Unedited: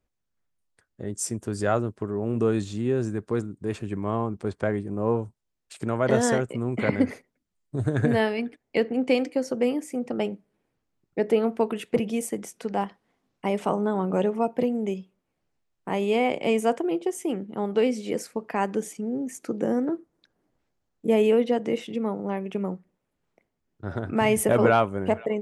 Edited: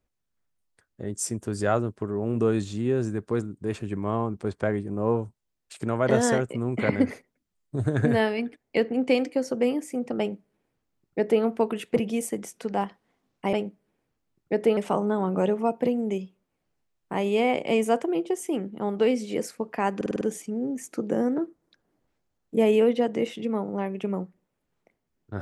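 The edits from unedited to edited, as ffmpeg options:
-filter_complex "[0:a]asplit=8[a][b][c][d][e][f][g][h];[a]atrim=end=13.532[i];[b]atrim=start=10.188:end=11.432[j];[c]atrim=start=13.528:end=18.772[k];[d]atrim=start=18.718:end=18.772[l];[e]atrim=start=18.718:end=18.772[m];[f]atrim=start=18.718:end=18.772[n];[g]atrim=start=18.718:end=18.772[o];[h]atrim=start=18.718[p];[i][j]acrossfade=d=0.004:c1=hsin:c2=hsin[q];[q][k]acrossfade=d=0.004:c1=hsin:c2=hsin[r];[r][l]acrossfade=d=0.004:c1=hsin:c2=hsin[s];[s][m]acrossfade=d=0.004:c1=hsin:c2=hsin[t];[t][n]acrossfade=d=0.004:c1=hsin:c2=hsin[u];[u][o]acrossfade=d=0.004:c1=hsin:c2=hsin[v];[v][p]acrossfade=d=0.004:c1=hsin:c2=hsin"

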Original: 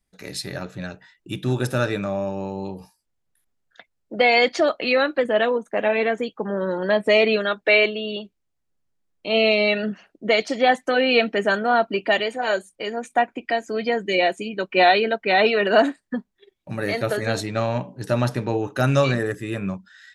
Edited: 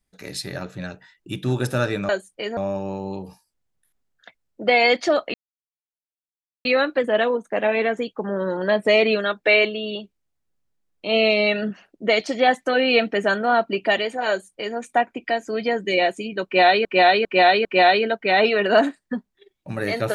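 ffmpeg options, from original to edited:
-filter_complex "[0:a]asplit=7[a][b][c][d][e][f][g];[a]atrim=end=2.092[h];[b]atrim=start=12.498:end=12.982[i];[c]atrim=start=2.088:end=4.86,asetpts=PTS-STARTPTS,afade=t=out:st=2.768:d=0.004:c=hsin,apad=pad_dur=1.31[j];[d]atrim=start=4.86:end=15.062,asetpts=PTS-STARTPTS,afade=t=in:d=0.004:c=hsin[k];[e]atrim=start=14.658:end=15.062[l];[f]atrim=start=14.658:end=15.062[m];[g]atrim=start=14.658[n];[h][i]acrossfade=d=0.004:c1=hsin:c2=hsin[o];[j][k]concat=n=2:v=0:a=1[p];[o][p]acrossfade=d=0.004:c1=hsin:c2=hsin[q];[q][l]acrossfade=d=0.004:c1=hsin:c2=hsin[r];[r][m]acrossfade=d=0.004:c1=hsin:c2=hsin[s];[s][n]acrossfade=d=0.004:c1=hsin:c2=hsin"

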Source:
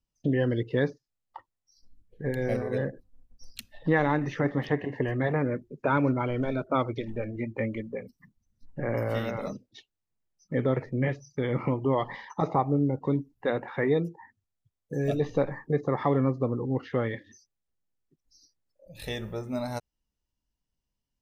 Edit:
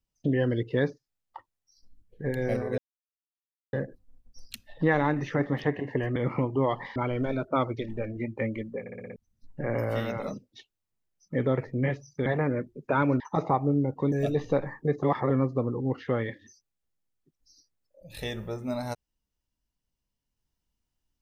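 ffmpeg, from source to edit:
-filter_complex "[0:a]asplit=15[a][b][c][d][e][f][g][h][i][j][k][l][m][n][o];[a]atrim=end=2.78,asetpts=PTS-STARTPTS,afade=t=out:st=2.776:d=0.004:c=hsin,apad=pad_dur=0.95[p];[b]atrim=start=2.78:end=5.212,asetpts=PTS-STARTPTS,afade=t=in:d=0.004:c=hsin[q];[c]atrim=start=11.448:end=12.252[r];[d]atrim=start=6.148:end=8.052[s];[e]atrim=start=7.988:end=8.052[t];[f]atrim=start=7.988:end=8.052[u];[g]atrim=start=7.988:end=8.052[v];[h]atrim=start=7.988:end=8.052[w];[i]atrim=start=7.988:end=8.052[x];[j]atrim=start=8.348:end=11.452[y];[k]atrim=start=5.208:end=6.152[z];[l]atrim=start=12.248:end=13.172[aa];[m]atrim=start=14.968:end=15.882[ab];[n]atrim=start=15.878:end=16.152,asetpts=PTS-STARTPTS,areverse[ac];[o]atrim=start=16.148[ad];[p][q]concat=n=2:v=0:a=1[ae];[ae][r]acrossfade=d=0.004:c1=hsin:c2=hsin[af];[af][s]acrossfade=d=0.004:c1=hsin:c2=hsin[ag];[ag][t]acrossfade=d=0.004:c1=hsin:c2=hsin[ah];[ah][u]acrossfade=d=0.004:c1=hsin:c2=hsin[ai];[ai][v]acrossfade=d=0.004:c1=hsin:c2=hsin[aj];[aj][w]acrossfade=d=0.004:c1=hsin:c2=hsin[ak];[ak][x]acrossfade=d=0.004:c1=hsin:c2=hsin[al];[al][y]acrossfade=d=0.004:c1=hsin:c2=hsin[am];[am][z]acrossfade=d=0.004:c1=hsin:c2=hsin[an];[an][aa]acrossfade=d=0.004:c1=hsin:c2=hsin[ao];[ao][ab]acrossfade=d=0.004:c1=hsin:c2=hsin[ap];[ap][ac]acrossfade=d=0.004:c1=hsin:c2=hsin[aq];[aq][ad]acrossfade=d=0.004:c1=hsin:c2=hsin"

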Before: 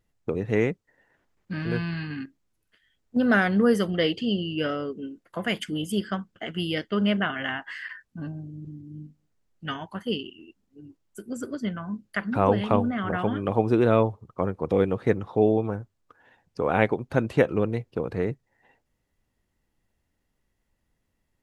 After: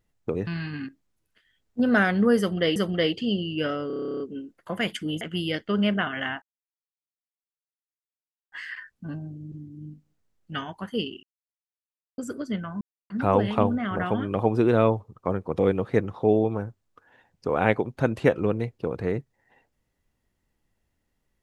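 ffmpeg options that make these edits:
-filter_complex "[0:a]asplit=20[a][b][c][d][e][f][g][h][i][j][k][l][m][n][o][p][q][r][s][t];[a]atrim=end=0.472[u];[b]atrim=start=1.838:end=4.132[v];[c]atrim=start=3.758:end=4.902[w];[d]atrim=start=4.868:end=4.902[x];[e]atrim=start=4.868:end=4.902[y];[f]atrim=start=4.868:end=4.902[z];[g]atrim=start=4.868:end=4.902[aa];[h]atrim=start=4.868:end=4.902[ab];[i]atrim=start=4.868:end=4.902[ac];[j]atrim=start=4.868:end=4.902[ad];[k]atrim=start=4.868:end=4.902[ae];[l]atrim=start=4.868:end=4.902[af];[m]atrim=start=4.868:end=4.902[ag];[n]atrim=start=4.868:end=5.882[ah];[o]atrim=start=6.438:end=7.65,asetpts=PTS-STARTPTS,afade=t=out:st=1.208:d=0.004:c=hsin,apad=pad_dur=2.1[ai];[p]atrim=start=7.65:end=10.36,asetpts=PTS-STARTPTS,afade=t=in:d=0.004:c=hsin,afade=t=out:st=2.706:d=0.004:c=hsin[aj];[q]atrim=start=10.36:end=11.31,asetpts=PTS-STARTPTS,volume=0[ak];[r]atrim=start=11.31:end=11.94,asetpts=PTS-STARTPTS,afade=t=in:d=0.004:c=hsin,afade=t=out:st=0.626:d=0.004:c=hsin[al];[s]atrim=start=11.94:end=12.23,asetpts=PTS-STARTPTS,volume=0[am];[t]atrim=start=12.23,asetpts=PTS-STARTPTS,afade=t=in:d=0.004:c=hsin[an];[u][v]acrossfade=d=0.004:c1=hsin:c2=hsin[ao];[ao][w]acrossfade=d=0.004:c1=hsin:c2=hsin[ap];[ap][x]acrossfade=d=0.004:c1=hsin:c2=hsin[aq];[aq][y]acrossfade=d=0.004:c1=hsin:c2=hsin[ar];[ar][z]acrossfade=d=0.004:c1=hsin:c2=hsin[as];[as][aa]acrossfade=d=0.004:c1=hsin:c2=hsin[at];[at][ab]acrossfade=d=0.004:c1=hsin:c2=hsin[au];[au][ac]acrossfade=d=0.004:c1=hsin:c2=hsin[av];[av][ad]acrossfade=d=0.004:c1=hsin:c2=hsin[aw];[aw][ae]acrossfade=d=0.004:c1=hsin:c2=hsin[ax];[ax][af]acrossfade=d=0.004:c1=hsin:c2=hsin[ay];[ay][ag]acrossfade=d=0.004:c1=hsin:c2=hsin[az];[az][ah]acrossfade=d=0.004:c1=hsin:c2=hsin[ba];[ai][aj][ak][al][am][an]concat=n=6:v=0:a=1[bb];[ba][bb]acrossfade=d=0.004:c1=hsin:c2=hsin"

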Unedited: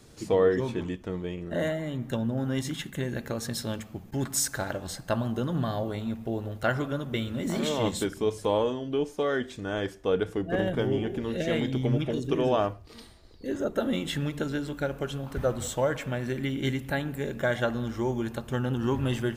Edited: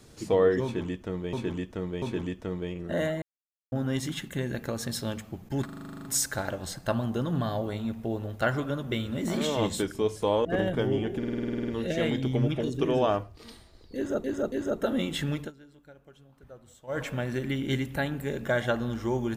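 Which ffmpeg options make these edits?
-filter_complex "[0:a]asplit=30[a][b][c][d][e][f][g][h][i][j][k][l][m][n][o][p][q][r][s][t][u][v][w][x][y][z][aa][ab][ac][ad];[a]atrim=end=1.332[ae];[b]atrim=start=0.638:end=1.332[af];[c]atrim=start=0.638:end=1.84,asetpts=PTS-STARTPTS,afade=t=out:st=1.198:d=0.004:c=hsin[ag];[d]atrim=start=1.84:end=2.34,asetpts=PTS-STARTPTS,volume=0[ah];[e]atrim=start=2.34:end=4.312,asetpts=PTS-STARTPTS,afade=t=in:d=0.004:c=hsin[ai];[f]atrim=start=4.268:end=4.312[aj];[g]atrim=start=4.268:end=4.312[ak];[h]atrim=start=4.268:end=4.312[al];[i]atrim=start=4.268:end=4.312[am];[j]atrim=start=4.268:end=4.312[an];[k]atrim=start=4.268:end=4.312[ao];[l]atrim=start=4.268:end=4.312[ap];[m]atrim=start=4.268:end=4.312[aq];[n]atrim=start=4.268:end=4.312[ar];[o]atrim=start=4.268:end=8.672[as];[p]atrim=start=10.448:end=11.232[at];[q]atrim=start=11.178:end=11.232[au];[r]atrim=start=11.178:end=11.232[av];[s]atrim=start=11.178:end=11.232[aw];[t]atrim=start=11.178:end=11.232[ax];[u]atrim=start=11.178:end=11.232[ay];[v]atrim=start=11.178:end=11.232[az];[w]atrim=start=11.178:end=11.232[ba];[x]atrim=start=11.178:end=11.232[bb];[y]atrim=start=11.178:end=11.232[bc];[z]atrim=start=11.178:end=13.742[bd];[aa]atrim=start=13.458:end=13.742[be];[ab]atrim=start=13.458:end=14.46,asetpts=PTS-STARTPTS,afade=t=out:st=0.872:d=0.13:silence=0.0794328[bf];[ac]atrim=start=14.46:end=15.81,asetpts=PTS-STARTPTS,volume=-22dB[bg];[ad]atrim=start=15.81,asetpts=PTS-STARTPTS,afade=t=in:d=0.13:silence=0.0794328[bh];[ae][af]acrossfade=d=0.004:c1=hsin:c2=hsin[bi];[ag][ah][ai]concat=n=3:v=0:a=1[bj];[bi][bj]acrossfade=d=0.004:c1=hsin:c2=hsin[bk];[bk][aj]acrossfade=d=0.004:c1=hsin:c2=hsin[bl];[bl][ak]acrossfade=d=0.004:c1=hsin:c2=hsin[bm];[bm][al]acrossfade=d=0.004:c1=hsin:c2=hsin[bn];[bn][am]acrossfade=d=0.004:c1=hsin:c2=hsin[bo];[bo][an]acrossfade=d=0.004:c1=hsin:c2=hsin[bp];[bp][ao]acrossfade=d=0.004:c1=hsin:c2=hsin[bq];[bq][ap]acrossfade=d=0.004:c1=hsin:c2=hsin[br];[br][aq]acrossfade=d=0.004:c1=hsin:c2=hsin[bs];[bs][ar]acrossfade=d=0.004:c1=hsin:c2=hsin[bt];[bt][as]acrossfade=d=0.004:c1=hsin:c2=hsin[bu];[bu][at]acrossfade=d=0.004:c1=hsin:c2=hsin[bv];[bv][au]acrossfade=d=0.004:c1=hsin:c2=hsin[bw];[bw][av]acrossfade=d=0.004:c1=hsin:c2=hsin[bx];[bx][aw]acrossfade=d=0.004:c1=hsin:c2=hsin[by];[by][ax]acrossfade=d=0.004:c1=hsin:c2=hsin[bz];[bz][ay]acrossfade=d=0.004:c1=hsin:c2=hsin[ca];[ca][az]acrossfade=d=0.004:c1=hsin:c2=hsin[cb];[cb][ba]acrossfade=d=0.004:c1=hsin:c2=hsin[cc];[cc][bb]acrossfade=d=0.004:c1=hsin:c2=hsin[cd];[cd][bc]acrossfade=d=0.004:c1=hsin:c2=hsin[ce];[ce][bd]acrossfade=d=0.004:c1=hsin:c2=hsin[cf];[cf][be]acrossfade=d=0.004:c1=hsin:c2=hsin[cg];[bf][bg][bh]concat=n=3:v=0:a=1[ch];[cg][ch]acrossfade=d=0.004:c1=hsin:c2=hsin"

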